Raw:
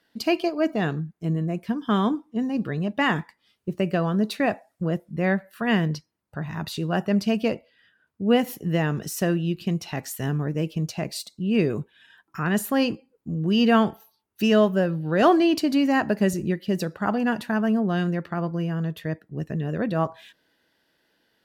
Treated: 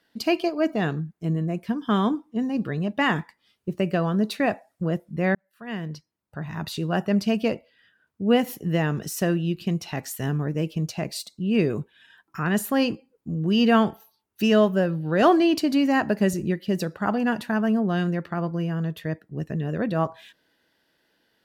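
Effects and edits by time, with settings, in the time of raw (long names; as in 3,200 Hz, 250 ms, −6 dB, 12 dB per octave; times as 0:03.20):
0:05.35–0:06.67: fade in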